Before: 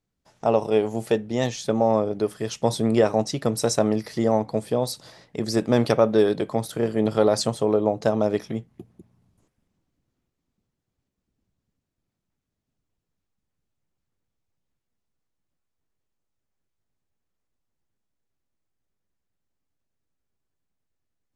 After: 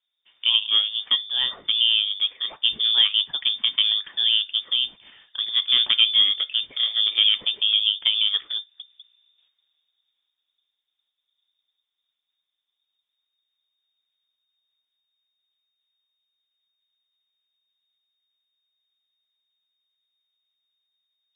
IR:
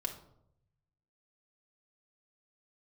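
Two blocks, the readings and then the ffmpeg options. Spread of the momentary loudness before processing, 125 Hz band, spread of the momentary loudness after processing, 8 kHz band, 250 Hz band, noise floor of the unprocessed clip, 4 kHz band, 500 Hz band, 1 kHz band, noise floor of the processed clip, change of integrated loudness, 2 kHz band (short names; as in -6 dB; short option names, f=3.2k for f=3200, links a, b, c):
7 LU, under -30 dB, 7 LU, under -40 dB, under -30 dB, -82 dBFS, +21.0 dB, under -30 dB, under -15 dB, -82 dBFS, +3.5 dB, +4.0 dB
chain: -af "lowpass=f=3.1k:t=q:w=0.5098,lowpass=f=3.1k:t=q:w=0.6013,lowpass=f=3.1k:t=q:w=0.9,lowpass=f=3.1k:t=q:w=2.563,afreqshift=-3700"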